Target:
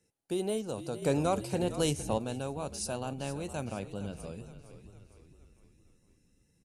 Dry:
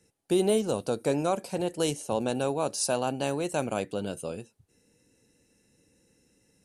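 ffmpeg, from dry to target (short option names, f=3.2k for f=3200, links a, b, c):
-filter_complex "[0:a]asettb=1/sr,asplit=3[a][b][c];[a]atrim=end=3.724[d];[b]atrim=start=3.72:end=4.2,asetpts=PTS-STARTPTS,afade=t=in:d=0.004:c=qsin,afade=t=out:st=0.476:d=0.004:c=qsin,equalizer=f=9.3k:w=0.64:g=-7.5[e];[c]atrim=start=4.196[f];[d][e]acrossfade=d=0.004:c1=hsin:c2=qsin[g];[g][f]acrossfade=d=0.004:c1=qsin:c2=hsin,asplit=6[h][i][j][k][l][m];[i]adelay=461,afreqshift=-45,volume=-13dB[n];[j]adelay=922,afreqshift=-90,volume=-19.2dB[o];[k]adelay=1383,afreqshift=-135,volume=-25.4dB[p];[l]adelay=1844,afreqshift=-180,volume=-31.6dB[q];[m]adelay=2305,afreqshift=-225,volume=-37.8dB[r];[h][n][o][p][q][r]amix=inputs=6:normalize=0,asettb=1/sr,asplit=3[s][t][u];[s]atrim=end=1.024[v];[t]atrim=start=1.02:end=2.18,asetpts=PTS-STARTPTS,afade=t=in:d=0.004:c=qsin,afade=t=out:st=1.156:d=0.004:c=qsin,acontrast=74[w];[u]atrim=start=2.176[x];[v][w]acrossfade=d=0.004:c1=hsin:c2=qsin[y];[y][x]acrossfade=d=0.004:c1=qsin:c2=hsin,asubboost=boost=3:cutoff=210,volume=-8dB"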